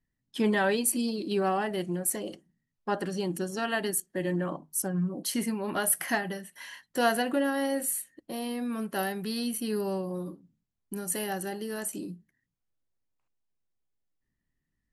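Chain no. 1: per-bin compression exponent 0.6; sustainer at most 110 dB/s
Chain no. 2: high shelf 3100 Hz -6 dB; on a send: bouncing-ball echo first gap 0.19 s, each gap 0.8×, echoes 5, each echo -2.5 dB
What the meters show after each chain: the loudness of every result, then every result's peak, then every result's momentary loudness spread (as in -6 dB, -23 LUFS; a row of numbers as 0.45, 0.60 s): -26.5, -28.5 LUFS; -8.5, -11.5 dBFS; 9, 11 LU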